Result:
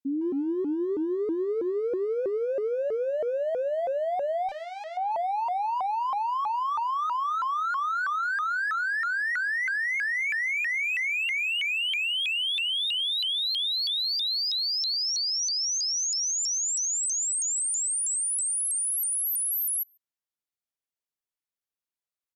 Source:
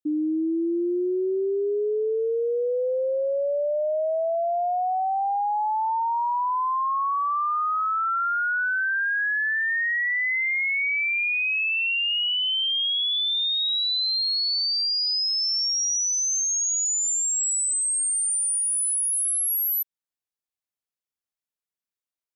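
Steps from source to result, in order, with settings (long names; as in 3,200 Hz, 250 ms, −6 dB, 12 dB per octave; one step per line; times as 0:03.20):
0:04.49–0:04.97: tube saturation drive 34 dB, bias 0.45
far-end echo of a speakerphone 150 ms, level −8 dB
pitch modulation by a square or saw wave saw up 3.1 Hz, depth 250 cents
level −3.5 dB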